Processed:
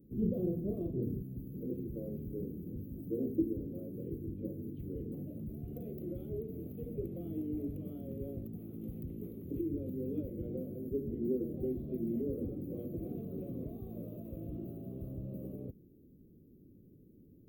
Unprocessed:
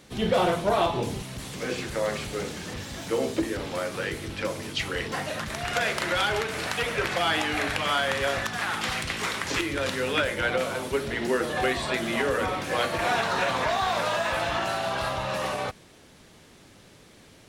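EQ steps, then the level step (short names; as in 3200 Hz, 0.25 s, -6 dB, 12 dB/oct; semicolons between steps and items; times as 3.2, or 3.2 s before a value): inverse Chebyshev band-stop 830–9000 Hz, stop band 50 dB; low shelf 240 Hz -7 dB; bell 7300 Hz -5.5 dB 0.77 oct; +1.0 dB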